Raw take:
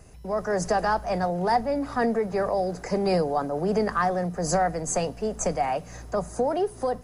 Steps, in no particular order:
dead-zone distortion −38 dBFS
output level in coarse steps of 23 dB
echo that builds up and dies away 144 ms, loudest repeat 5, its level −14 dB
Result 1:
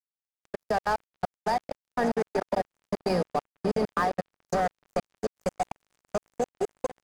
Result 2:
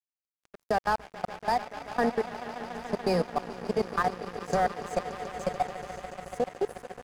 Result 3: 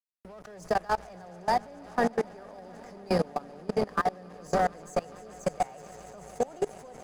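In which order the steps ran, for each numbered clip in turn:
echo that builds up and dies away, then output level in coarse steps, then dead-zone distortion
output level in coarse steps, then echo that builds up and dies away, then dead-zone distortion
echo that builds up and dies away, then dead-zone distortion, then output level in coarse steps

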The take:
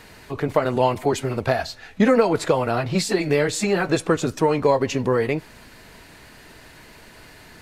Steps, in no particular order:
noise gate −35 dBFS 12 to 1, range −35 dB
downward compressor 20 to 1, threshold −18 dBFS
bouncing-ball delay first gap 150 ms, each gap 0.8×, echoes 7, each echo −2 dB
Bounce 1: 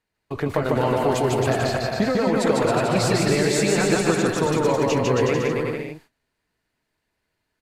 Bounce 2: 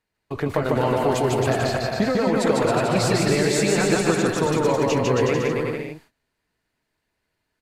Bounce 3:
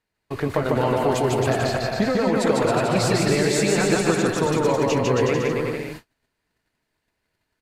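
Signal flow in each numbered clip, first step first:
downward compressor, then noise gate, then bouncing-ball delay
noise gate, then downward compressor, then bouncing-ball delay
downward compressor, then bouncing-ball delay, then noise gate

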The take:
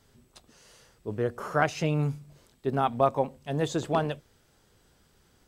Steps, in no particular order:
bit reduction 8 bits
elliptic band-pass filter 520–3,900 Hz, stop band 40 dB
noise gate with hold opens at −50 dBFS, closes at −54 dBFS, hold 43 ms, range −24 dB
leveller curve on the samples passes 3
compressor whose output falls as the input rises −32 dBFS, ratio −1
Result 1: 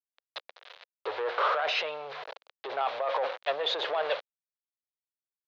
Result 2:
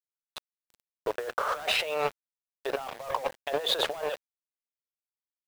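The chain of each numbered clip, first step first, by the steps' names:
noise gate with hold, then bit reduction, then compressor whose output falls as the input rises, then leveller curve on the samples, then elliptic band-pass filter
elliptic band-pass filter, then noise gate with hold, then leveller curve on the samples, then compressor whose output falls as the input rises, then bit reduction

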